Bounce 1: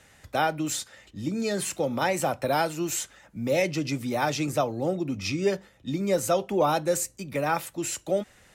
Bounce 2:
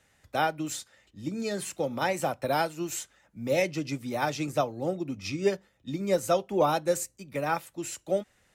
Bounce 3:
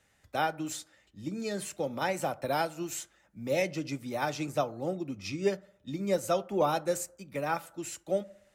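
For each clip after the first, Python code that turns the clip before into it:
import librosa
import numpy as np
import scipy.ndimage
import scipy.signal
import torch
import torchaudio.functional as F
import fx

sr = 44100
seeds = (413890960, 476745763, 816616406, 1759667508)

y1 = fx.upward_expand(x, sr, threshold_db=-39.0, expansion=1.5)
y2 = fx.rev_fdn(y1, sr, rt60_s=0.71, lf_ratio=0.75, hf_ratio=0.3, size_ms=30.0, drr_db=17.0)
y2 = y2 * 10.0 ** (-3.0 / 20.0)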